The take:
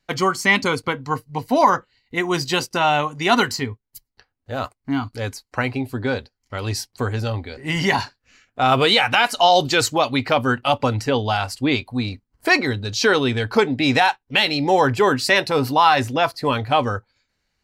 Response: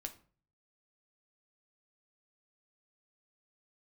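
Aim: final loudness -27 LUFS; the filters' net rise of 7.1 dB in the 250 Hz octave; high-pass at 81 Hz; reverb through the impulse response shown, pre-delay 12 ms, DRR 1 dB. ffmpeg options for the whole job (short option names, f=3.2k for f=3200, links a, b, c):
-filter_complex "[0:a]highpass=81,equalizer=f=250:t=o:g=8.5,asplit=2[a][b];[1:a]atrim=start_sample=2205,adelay=12[c];[b][c]afir=irnorm=-1:irlink=0,volume=2dB[d];[a][d]amix=inputs=2:normalize=0,volume=-12.5dB"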